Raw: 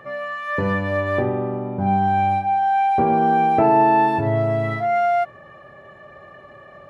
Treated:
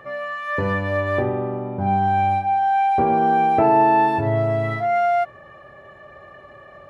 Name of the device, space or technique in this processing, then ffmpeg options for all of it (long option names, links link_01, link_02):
low shelf boost with a cut just above: -af "lowshelf=frequency=63:gain=6,equalizer=frequency=180:width_type=o:width=1.1:gain=-4"